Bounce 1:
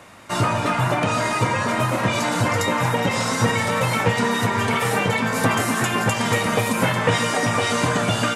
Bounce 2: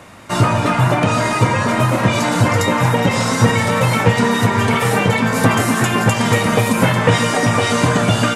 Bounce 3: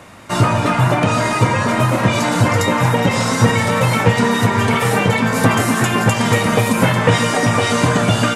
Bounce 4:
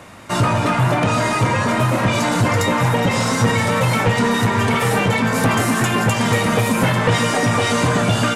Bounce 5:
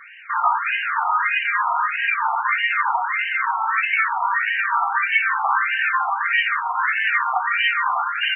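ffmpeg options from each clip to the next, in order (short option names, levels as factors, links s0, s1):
-af "lowshelf=f=350:g=5,volume=1.5"
-af anull
-af "asoftclip=type=tanh:threshold=0.335"
-af "aemphasis=mode=production:type=75fm,afftfilt=real='re*between(b*sr/1024,970*pow(2200/970,0.5+0.5*sin(2*PI*1.6*pts/sr))/1.41,970*pow(2200/970,0.5+0.5*sin(2*PI*1.6*pts/sr))*1.41)':imag='im*between(b*sr/1024,970*pow(2200/970,0.5+0.5*sin(2*PI*1.6*pts/sr))/1.41,970*pow(2200/970,0.5+0.5*sin(2*PI*1.6*pts/sr))*1.41)':win_size=1024:overlap=0.75,volume=1.5"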